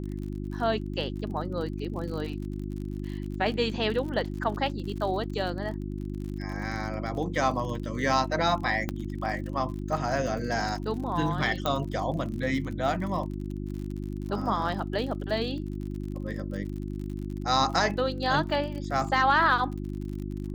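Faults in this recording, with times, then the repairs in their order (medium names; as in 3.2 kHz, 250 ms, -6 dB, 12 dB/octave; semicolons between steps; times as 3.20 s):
crackle 54 per s -36 dBFS
hum 50 Hz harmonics 7 -34 dBFS
8.89 s: pop -15 dBFS
11.66 s: pop -14 dBFS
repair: de-click; de-hum 50 Hz, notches 7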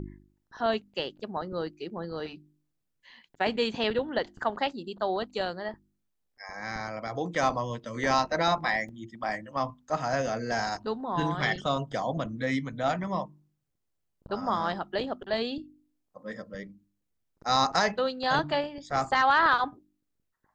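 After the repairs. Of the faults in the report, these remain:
8.89 s: pop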